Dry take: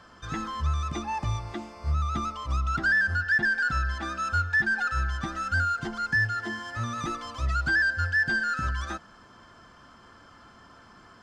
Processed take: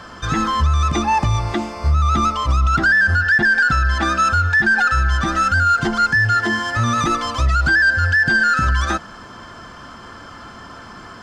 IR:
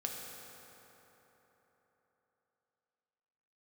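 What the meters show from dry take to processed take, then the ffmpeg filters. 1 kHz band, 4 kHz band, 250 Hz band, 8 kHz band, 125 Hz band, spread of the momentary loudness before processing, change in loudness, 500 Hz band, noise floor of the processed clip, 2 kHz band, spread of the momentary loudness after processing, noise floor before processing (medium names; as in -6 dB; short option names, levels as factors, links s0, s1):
+13.0 dB, +12.5 dB, +13.0 dB, +13.0 dB, +11.5 dB, 10 LU, +11.0 dB, +13.5 dB, -38 dBFS, +10.0 dB, 6 LU, -53 dBFS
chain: -af "alimiter=level_in=14.1:limit=0.891:release=50:level=0:latency=1,volume=0.398"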